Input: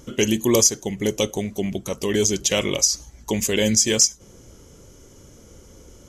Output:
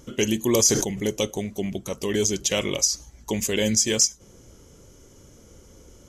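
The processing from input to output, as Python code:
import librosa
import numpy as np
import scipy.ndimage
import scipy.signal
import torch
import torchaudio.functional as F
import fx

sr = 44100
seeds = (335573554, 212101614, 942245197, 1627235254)

y = fx.sustainer(x, sr, db_per_s=54.0, at=(0.56, 1.06))
y = y * librosa.db_to_amplitude(-3.0)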